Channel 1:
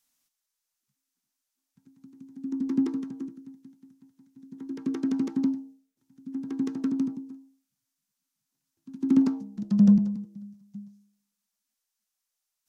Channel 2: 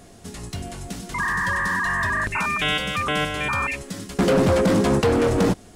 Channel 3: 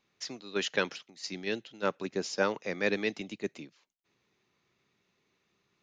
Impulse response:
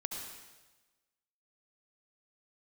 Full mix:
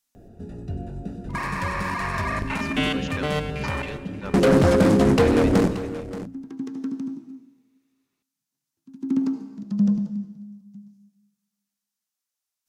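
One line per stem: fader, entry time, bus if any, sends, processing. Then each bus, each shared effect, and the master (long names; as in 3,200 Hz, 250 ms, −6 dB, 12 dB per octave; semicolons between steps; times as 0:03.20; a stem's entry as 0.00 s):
−6.0 dB, 0.00 s, send −3.5 dB, no echo send, no processing
−0.5 dB, 0.15 s, send −6.5 dB, echo send −12 dB, adaptive Wiener filter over 41 samples; mains-hum notches 60/120/180/240/300 Hz
−6.5 dB, 2.40 s, no send, no echo send, no processing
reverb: on, RT60 1.2 s, pre-delay 63 ms
echo: single-tap delay 578 ms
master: no processing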